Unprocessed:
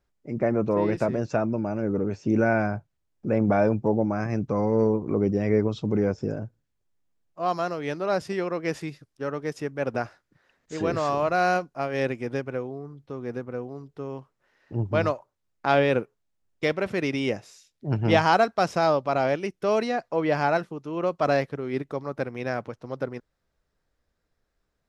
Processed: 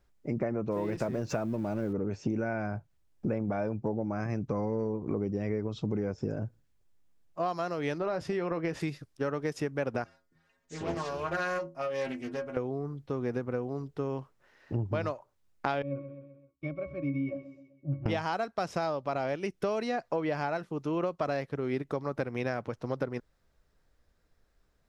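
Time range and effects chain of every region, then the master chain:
0.72–1.93 s: companding laws mixed up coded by mu + upward compressor, threshold -27 dBFS
7.98–8.80 s: compression 3:1, threshold -28 dBFS + treble shelf 4.6 kHz -11 dB + doubling 18 ms -12.5 dB
10.04–12.57 s: treble shelf 5.4 kHz +4 dB + inharmonic resonator 81 Hz, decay 0.36 s, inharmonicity 0.008 + loudspeaker Doppler distortion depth 0.38 ms
15.82–18.06 s: pitch-class resonator C#, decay 0.21 s + feedback delay 129 ms, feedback 49%, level -16.5 dB
whole clip: bass shelf 66 Hz +5.5 dB; compression 12:1, threshold -31 dBFS; trim +3.5 dB

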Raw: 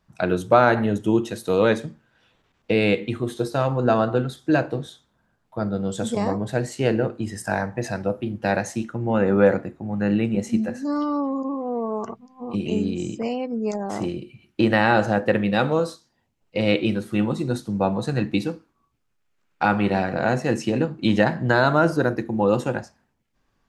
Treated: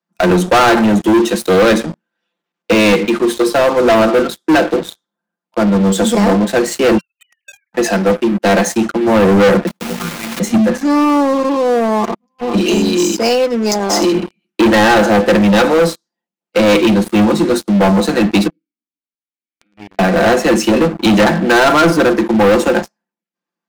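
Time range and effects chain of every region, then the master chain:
6.97–7.73 s: formants replaced by sine waves + steep high-pass 2.3 kHz 48 dB/octave
9.67–10.40 s: block-companded coder 3-bit + frequency shift -340 Hz + compression 10:1, threshold -27 dBFS
12.57–14.12 s: high-pass 240 Hz 24 dB/octave + peaking EQ 5.3 kHz +15 dB 0.86 oct
18.47–19.99 s: compression 16:1, threshold -28 dBFS + vowel filter i
whole clip: steep high-pass 170 Hz 96 dB/octave; comb 5.8 ms, depth 57%; waveshaping leveller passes 5; trim -3.5 dB

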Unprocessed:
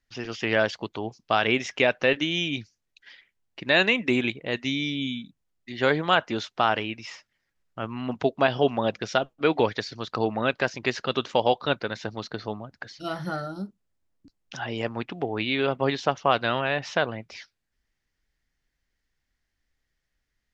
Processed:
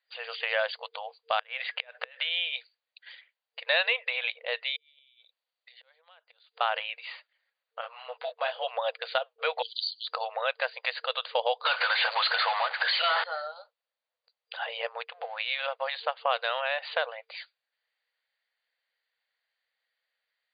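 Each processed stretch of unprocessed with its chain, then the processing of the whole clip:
1.39–2.29 s: peaking EQ 1.6 kHz +5 dB 0.9 oct + compression 10:1, threshold -21 dBFS + inverted gate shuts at -12 dBFS, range -28 dB
4.76–6.61 s: treble shelf 5.6 kHz +11 dB + inverted gate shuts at -19 dBFS, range -33 dB + compression 12:1, threshold -50 dBFS
7.81–8.64 s: companding laws mixed up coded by A + detune thickener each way 23 cents
9.62–10.07 s: rippled Chebyshev high-pass 3 kHz, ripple 6 dB + tilt EQ +3.5 dB/octave
11.65–13.24 s: high-order bell 1.6 kHz +12 dB 2.4 oct + compression 5:1, threshold -28 dBFS + power-law waveshaper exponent 0.35
15.04–16.17 s: companding laws mixed up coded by A + low-pass 2.2 kHz 6 dB/octave + tilt EQ +2 dB/octave
whole clip: FFT band-pass 460–4800 Hz; treble shelf 3.4 kHz +7 dB; compression 1.5:1, threshold -29 dBFS; trim -1 dB

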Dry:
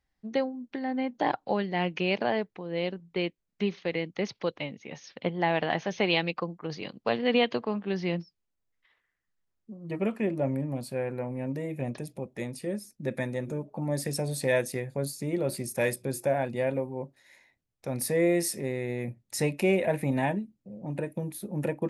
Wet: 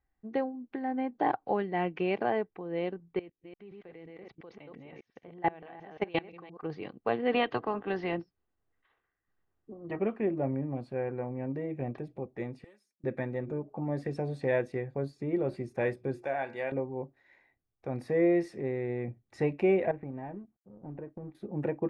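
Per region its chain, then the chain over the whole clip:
3.19–6.63 s: chunks repeated in reverse 174 ms, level -2.5 dB + level held to a coarse grid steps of 23 dB
7.31–9.99 s: spectral peaks clipped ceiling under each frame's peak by 13 dB + band-stop 2.3 kHz, Q 14
12.64–13.04 s: self-modulated delay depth 0.078 ms + differentiator + three bands compressed up and down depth 40%
16.25–16.72 s: low-pass 9.2 kHz + tilt EQ +4.5 dB/octave + de-hum 82.95 Hz, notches 29
19.91–21.35 s: companding laws mixed up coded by A + compression 3:1, threshold -35 dBFS + tape spacing loss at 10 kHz 35 dB
whole clip: low-pass 1.8 kHz 12 dB/octave; comb 2.6 ms, depth 33%; trim -1.5 dB

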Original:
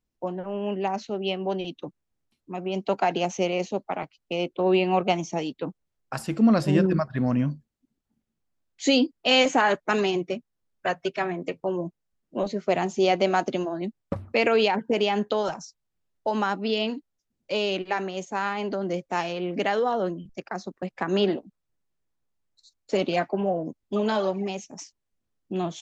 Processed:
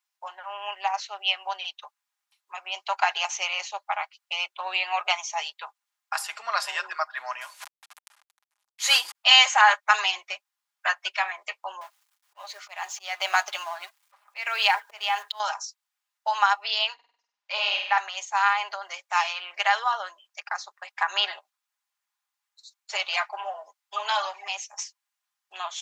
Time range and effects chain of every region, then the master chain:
7.41–9.15 s: CVSD coder 64 kbps + decay stretcher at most 51 dB/s
11.81–15.40 s: companding laws mixed up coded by mu + slow attack 345 ms
16.94–17.98 s: distance through air 140 m + flutter echo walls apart 8.4 m, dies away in 0.65 s
whole clip: steep high-pass 850 Hz 36 dB/octave; comb 4.9 ms, depth 49%; trim +6 dB

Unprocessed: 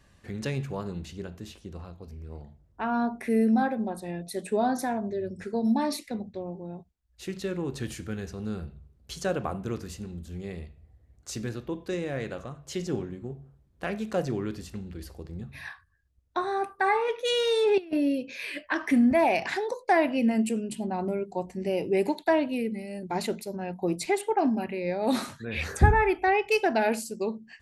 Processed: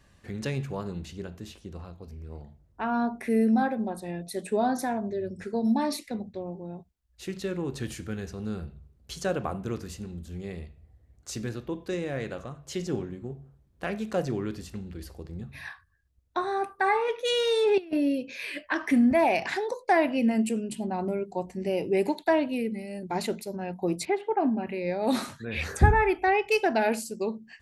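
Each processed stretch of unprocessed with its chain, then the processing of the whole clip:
24.05–24.67 s: high-pass 70 Hz + distance through air 330 m
whole clip: none

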